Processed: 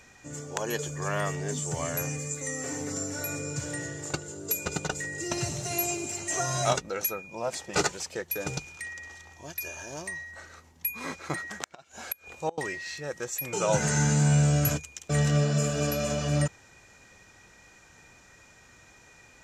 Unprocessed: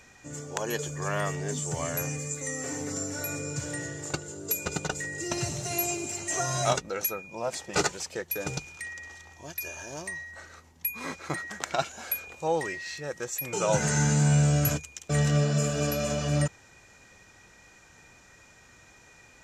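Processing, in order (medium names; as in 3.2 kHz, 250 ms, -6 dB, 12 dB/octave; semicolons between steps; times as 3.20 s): 11.44–12.58 s: inverted gate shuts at -18 dBFS, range -26 dB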